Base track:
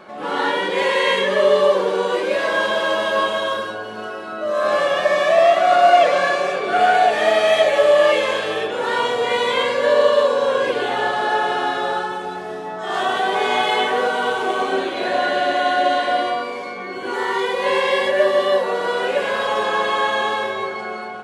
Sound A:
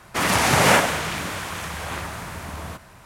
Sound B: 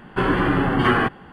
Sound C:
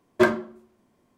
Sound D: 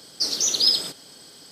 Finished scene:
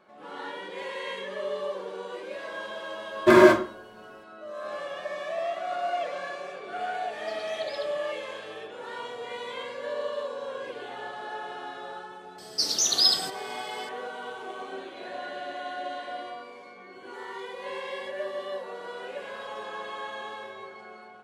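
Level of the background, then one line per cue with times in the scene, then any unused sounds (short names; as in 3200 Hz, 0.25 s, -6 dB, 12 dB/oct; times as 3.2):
base track -17.5 dB
3.07 add C -1 dB + non-linear reverb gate 0.23 s flat, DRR -7.5 dB
7.07 add D -13.5 dB + LPF 3300 Hz 24 dB/oct
12.38 add D -2 dB
not used: A, B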